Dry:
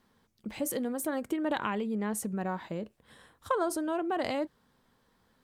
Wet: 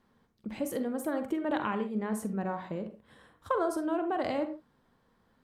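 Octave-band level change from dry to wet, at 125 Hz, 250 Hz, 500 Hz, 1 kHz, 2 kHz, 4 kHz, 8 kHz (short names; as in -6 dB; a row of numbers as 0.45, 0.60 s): 0.0, +0.5, +0.5, 0.0, -1.5, -4.5, -8.0 dB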